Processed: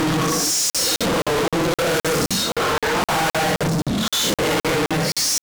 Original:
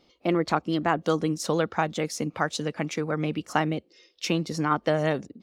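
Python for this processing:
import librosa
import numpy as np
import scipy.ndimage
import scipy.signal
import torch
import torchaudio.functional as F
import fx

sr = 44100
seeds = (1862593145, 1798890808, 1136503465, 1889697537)

y = fx.echo_thinned(x, sr, ms=218, feedback_pct=22, hz=1100.0, wet_db=-7)
y = fx.paulstretch(y, sr, seeds[0], factor=6.6, window_s=0.05, from_s=1.32)
y = fx.fuzz(y, sr, gain_db=51.0, gate_db=-55.0)
y = fx.buffer_crackle(y, sr, first_s=0.7, period_s=0.26, block=2048, kind='zero')
y = y * 10.0 ** (-5.5 / 20.0)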